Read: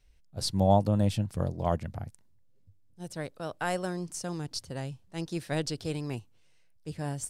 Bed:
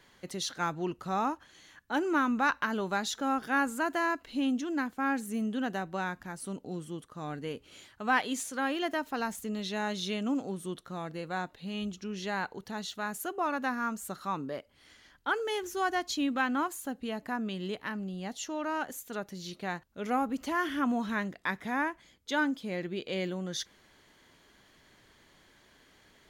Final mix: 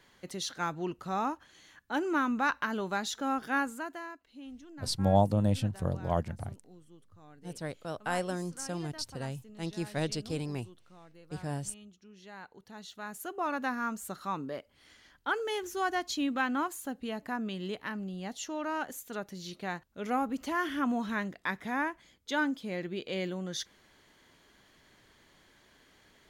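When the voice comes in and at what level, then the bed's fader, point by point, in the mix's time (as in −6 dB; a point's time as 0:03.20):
4.45 s, −1.5 dB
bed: 0:03.57 −1.5 dB
0:04.21 −17 dB
0:12.13 −17 dB
0:13.51 −1 dB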